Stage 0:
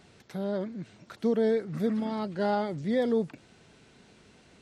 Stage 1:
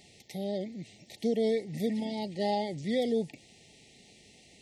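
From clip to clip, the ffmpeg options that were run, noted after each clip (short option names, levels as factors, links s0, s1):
-af "afftfilt=real='re*(1-between(b*sr/4096,880,1800))':imag='im*(1-between(b*sr/4096,880,1800))':win_size=4096:overlap=0.75,highshelf=f=2200:g=10.5,volume=0.708"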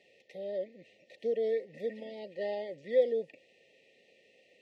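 -filter_complex "[0:a]asplit=3[s0][s1][s2];[s0]bandpass=f=530:t=q:w=8,volume=1[s3];[s1]bandpass=f=1840:t=q:w=8,volume=0.501[s4];[s2]bandpass=f=2480:t=q:w=8,volume=0.355[s5];[s3][s4][s5]amix=inputs=3:normalize=0,volume=2.24"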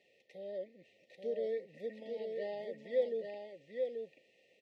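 -af "aecho=1:1:834:0.596,volume=0.501"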